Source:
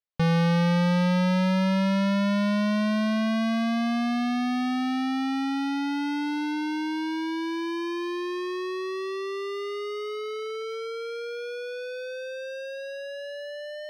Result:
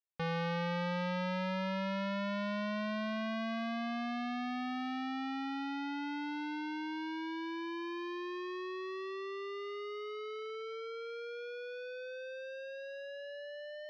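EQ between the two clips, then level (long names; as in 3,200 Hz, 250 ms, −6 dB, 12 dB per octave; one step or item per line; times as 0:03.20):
low-pass filter 3,900 Hz 12 dB per octave
parametric band 61 Hz −13 dB 2.9 octaves
low-shelf EQ 95 Hz −9 dB
−7.5 dB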